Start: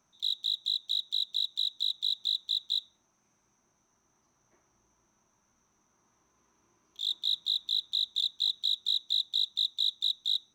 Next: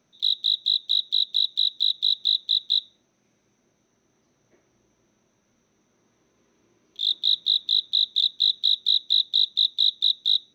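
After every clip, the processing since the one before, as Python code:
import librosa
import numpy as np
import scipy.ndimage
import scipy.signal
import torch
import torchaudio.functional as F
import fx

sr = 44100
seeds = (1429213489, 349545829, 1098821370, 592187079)

y = fx.graphic_eq_10(x, sr, hz=(125, 250, 500, 1000, 2000, 4000, 8000), db=(6, 6, 11, -6, 5, 9, -7))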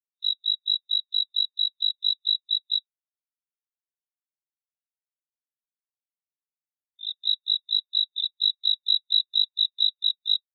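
y = fx.spectral_expand(x, sr, expansion=2.5)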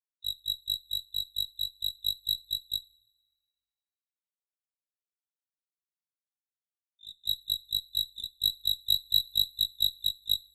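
y = fx.cheby_harmonics(x, sr, harmonics=(2, 3), levels_db=(-23, -11), full_scale_db=-10.0)
y = fx.rev_double_slope(y, sr, seeds[0], early_s=0.28, late_s=1.5, knee_db=-18, drr_db=13.5)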